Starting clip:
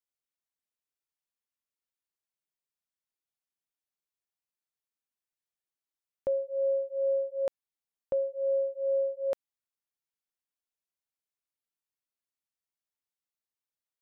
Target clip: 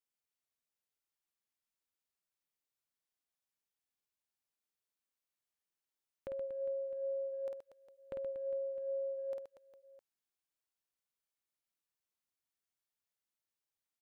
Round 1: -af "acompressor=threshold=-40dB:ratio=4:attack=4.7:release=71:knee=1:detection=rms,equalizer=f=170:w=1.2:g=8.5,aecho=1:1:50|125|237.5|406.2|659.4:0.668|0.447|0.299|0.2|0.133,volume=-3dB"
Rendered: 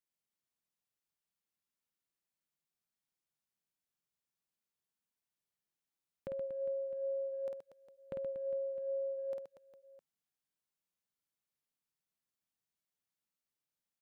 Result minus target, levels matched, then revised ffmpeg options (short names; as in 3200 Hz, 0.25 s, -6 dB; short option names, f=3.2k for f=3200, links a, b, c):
125 Hz band +5.0 dB
-af "acompressor=threshold=-40dB:ratio=4:attack=4.7:release=71:knee=1:detection=rms,aecho=1:1:50|125|237.5|406.2|659.4:0.668|0.447|0.299|0.2|0.133,volume=-3dB"